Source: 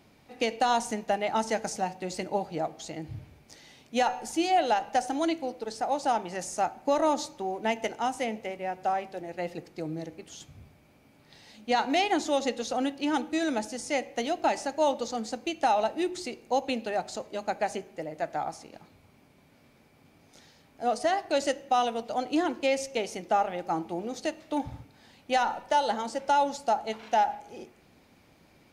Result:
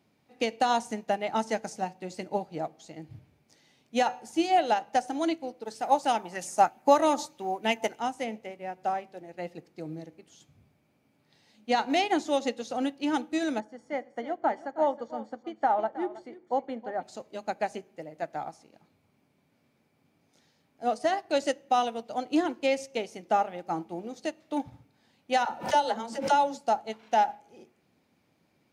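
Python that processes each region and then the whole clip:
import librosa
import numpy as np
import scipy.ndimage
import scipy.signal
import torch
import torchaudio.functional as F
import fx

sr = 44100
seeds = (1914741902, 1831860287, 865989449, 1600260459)

y = fx.chain(x, sr, fx.high_shelf(hz=8800.0, db=11.5),
    fx.bell_lfo(hz=3.2, low_hz=790.0, high_hz=3200.0, db=8), at=(5.65, 8.0))
y = fx.chain(y, sr, fx.savgol(points=41),
    fx.tilt_eq(slope=1.5),
    fx.echo_single(ms=318, db=-11.5), at=(13.6, 17.03))
y = fx.chain(y, sr, fx.dispersion(late='lows', ms=61.0, hz=370.0),
    fx.pre_swell(db_per_s=97.0), at=(25.45, 26.61))
y = scipy.signal.sosfilt(scipy.signal.butter(2, 130.0, 'highpass', fs=sr, output='sos'), y)
y = fx.low_shelf(y, sr, hz=200.0, db=6.5)
y = fx.upward_expand(y, sr, threshold_db=-43.0, expansion=1.5)
y = y * 10.0 ** (2.0 / 20.0)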